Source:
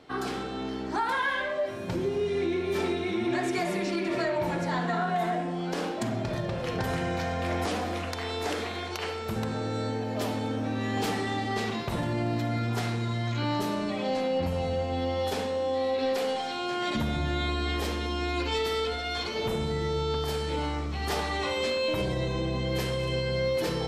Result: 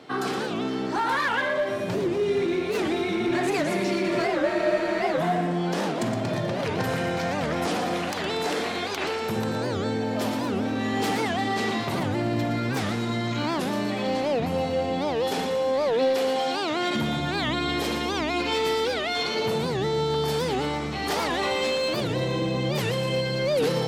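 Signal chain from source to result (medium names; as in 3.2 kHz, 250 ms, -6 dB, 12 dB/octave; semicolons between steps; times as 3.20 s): high-pass 110 Hz 24 dB/octave; in parallel at +1 dB: peak limiter -29 dBFS, peak gain reduction 11 dB; on the sum: hard clipper -20.5 dBFS, distortion -22 dB; two-band feedback delay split 340 Hz, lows 476 ms, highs 116 ms, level -8.5 dB; spectral freeze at 4.30 s, 0.90 s; warped record 78 rpm, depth 250 cents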